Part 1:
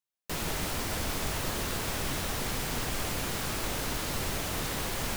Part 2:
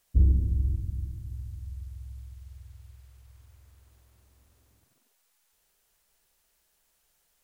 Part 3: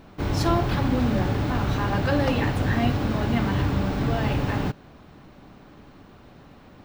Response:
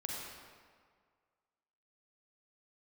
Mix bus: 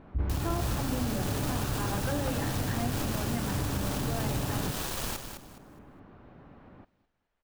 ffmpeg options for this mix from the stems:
-filter_complex "[0:a]bandreject=frequency=2100:width=5.6,acrusher=bits=4:mix=0:aa=0.5,asoftclip=type=tanh:threshold=-25dB,volume=0.5dB,asplit=2[link_01][link_02];[link_02]volume=-8dB[link_03];[1:a]volume=-3dB[link_04];[2:a]volume=-3.5dB,asplit=3[link_05][link_06][link_07];[link_06]volume=-21dB[link_08];[link_07]apad=whole_len=227739[link_09];[link_01][link_09]sidechaincompress=threshold=-28dB:ratio=8:attack=8.9:release=120[link_10];[link_04][link_05]amix=inputs=2:normalize=0,lowpass=1900,acompressor=threshold=-32dB:ratio=2,volume=0dB[link_11];[link_03][link_08]amix=inputs=2:normalize=0,aecho=0:1:208|416|624|832:1|0.26|0.0676|0.0176[link_12];[link_10][link_11][link_12]amix=inputs=3:normalize=0"

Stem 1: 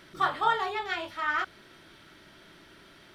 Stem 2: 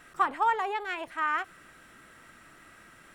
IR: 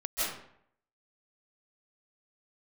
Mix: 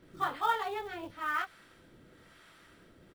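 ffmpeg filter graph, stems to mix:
-filter_complex "[0:a]volume=-6dB[link_01];[1:a]equalizer=frequency=490:width_type=o:width=0.33:gain=9.5,adelay=24,volume=-7dB[link_02];[link_01][link_02]amix=inputs=2:normalize=0,lowshelf=frequency=340:gain=6.5,acrossover=split=660[link_03][link_04];[link_03]aeval=exprs='val(0)*(1-0.7/2+0.7/2*cos(2*PI*1*n/s))':channel_layout=same[link_05];[link_04]aeval=exprs='val(0)*(1-0.7/2-0.7/2*cos(2*PI*1*n/s))':channel_layout=same[link_06];[link_05][link_06]amix=inputs=2:normalize=0,acrusher=bits=6:mode=log:mix=0:aa=0.000001"

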